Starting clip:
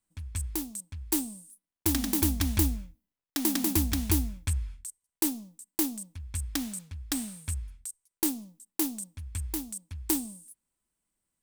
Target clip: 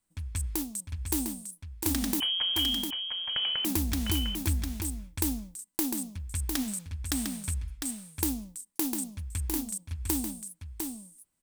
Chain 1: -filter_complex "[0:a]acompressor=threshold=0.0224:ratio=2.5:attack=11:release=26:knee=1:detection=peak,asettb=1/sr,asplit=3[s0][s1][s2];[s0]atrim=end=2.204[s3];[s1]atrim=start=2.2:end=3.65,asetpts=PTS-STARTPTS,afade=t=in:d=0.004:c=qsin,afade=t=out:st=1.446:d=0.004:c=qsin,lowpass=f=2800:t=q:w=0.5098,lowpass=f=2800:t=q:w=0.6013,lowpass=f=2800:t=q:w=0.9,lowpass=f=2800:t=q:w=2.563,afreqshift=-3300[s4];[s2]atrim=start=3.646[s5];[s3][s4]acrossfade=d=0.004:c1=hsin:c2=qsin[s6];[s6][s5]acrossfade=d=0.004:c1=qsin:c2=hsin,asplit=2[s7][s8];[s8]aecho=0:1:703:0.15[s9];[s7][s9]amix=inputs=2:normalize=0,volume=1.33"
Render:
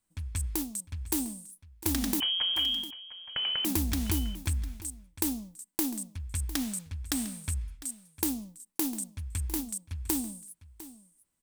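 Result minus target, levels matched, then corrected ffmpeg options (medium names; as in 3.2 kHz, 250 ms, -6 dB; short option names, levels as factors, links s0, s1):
echo-to-direct -11 dB
-filter_complex "[0:a]acompressor=threshold=0.0224:ratio=2.5:attack=11:release=26:knee=1:detection=peak,asettb=1/sr,asplit=3[s0][s1][s2];[s0]atrim=end=2.204[s3];[s1]atrim=start=2.2:end=3.65,asetpts=PTS-STARTPTS,afade=t=in:d=0.004:c=qsin,afade=t=out:st=1.446:d=0.004:c=qsin,lowpass=f=2800:t=q:w=0.5098,lowpass=f=2800:t=q:w=0.6013,lowpass=f=2800:t=q:w=0.9,lowpass=f=2800:t=q:w=2.563,afreqshift=-3300[s4];[s2]atrim=start=3.646[s5];[s3][s4]acrossfade=d=0.004:c1=hsin:c2=qsin[s6];[s6][s5]acrossfade=d=0.004:c1=qsin:c2=hsin,asplit=2[s7][s8];[s8]aecho=0:1:703:0.531[s9];[s7][s9]amix=inputs=2:normalize=0,volume=1.33"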